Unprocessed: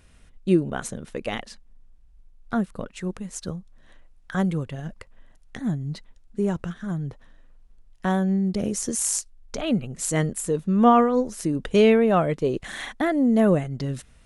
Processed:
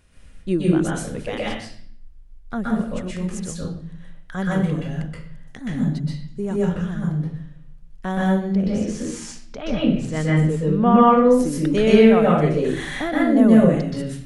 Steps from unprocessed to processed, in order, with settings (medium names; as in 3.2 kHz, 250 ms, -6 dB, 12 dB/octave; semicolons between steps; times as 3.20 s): 8.54–11.31 s: low-pass 3.6 kHz 12 dB/octave; reverberation RT60 0.55 s, pre-delay 121 ms, DRR -5.5 dB; trim -3 dB